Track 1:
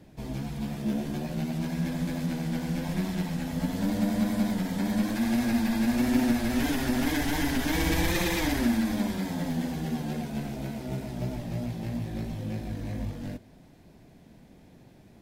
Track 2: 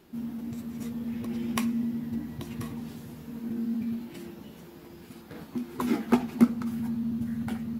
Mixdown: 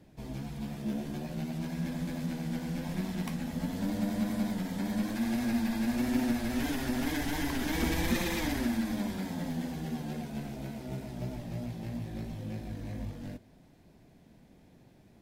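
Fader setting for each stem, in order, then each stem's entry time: −5.0, −12.5 decibels; 0.00, 1.70 seconds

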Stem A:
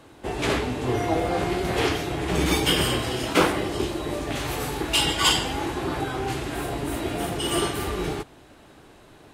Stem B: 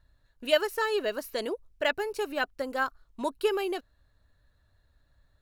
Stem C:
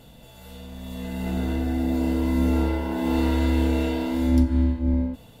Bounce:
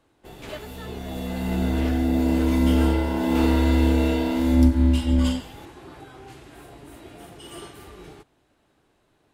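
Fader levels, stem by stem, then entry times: −15.5, −15.5, +2.5 decibels; 0.00, 0.00, 0.25 seconds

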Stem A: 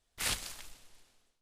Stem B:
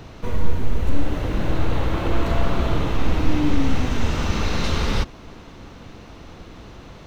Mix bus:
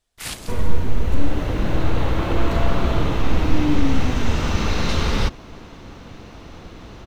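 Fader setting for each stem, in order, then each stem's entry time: +2.0, +1.5 decibels; 0.00, 0.25 seconds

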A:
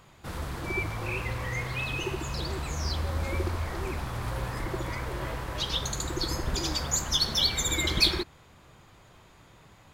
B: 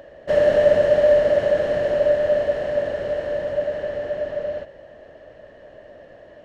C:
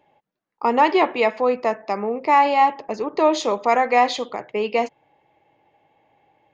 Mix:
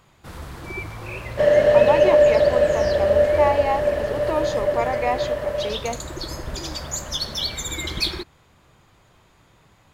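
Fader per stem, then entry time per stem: −1.0, +1.0, −7.5 decibels; 0.00, 1.10, 1.10 seconds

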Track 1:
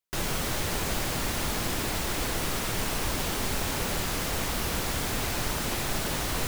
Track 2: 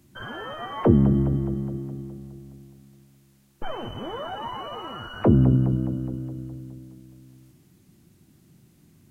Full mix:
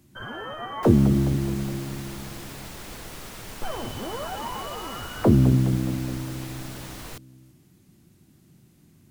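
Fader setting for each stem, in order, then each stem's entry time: −10.0, 0.0 decibels; 0.70, 0.00 seconds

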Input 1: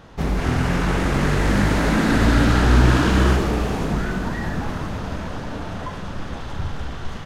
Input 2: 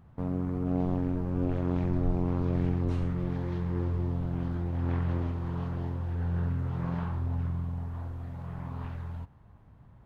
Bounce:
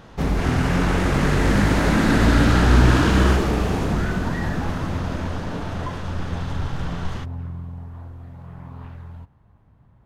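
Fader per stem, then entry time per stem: 0.0, 0.0 decibels; 0.00, 0.00 seconds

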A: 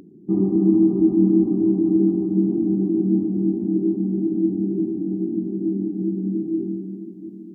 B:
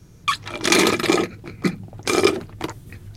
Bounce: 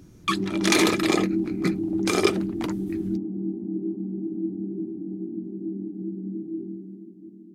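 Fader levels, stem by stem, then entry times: −8.5, −4.5 decibels; 0.00, 0.00 seconds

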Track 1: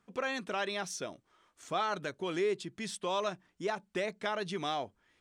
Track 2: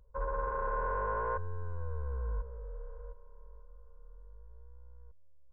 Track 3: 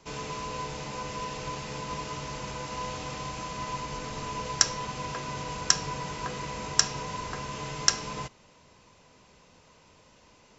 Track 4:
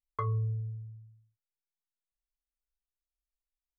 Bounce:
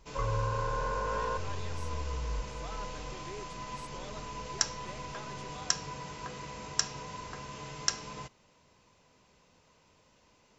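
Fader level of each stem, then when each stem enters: −15.0, 0.0, −7.0, −3.5 decibels; 0.90, 0.00, 0.00, 0.00 seconds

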